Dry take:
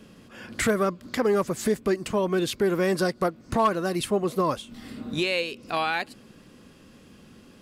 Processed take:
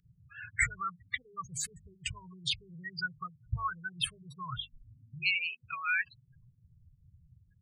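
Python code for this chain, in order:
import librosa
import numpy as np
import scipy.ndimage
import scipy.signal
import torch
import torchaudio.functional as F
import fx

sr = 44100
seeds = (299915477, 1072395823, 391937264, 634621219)

y = fx.spec_gate(x, sr, threshold_db=-10, keep='strong')
y = scipy.signal.sosfilt(scipy.signal.cheby2(4, 40, [210.0, 850.0], 'bandstop', fs=sr, output='sos'), y)
y = fx.hum_notches(y, sr, base_hz=50, count=4)
y = y * librosa.db_to_amplitude(3.5)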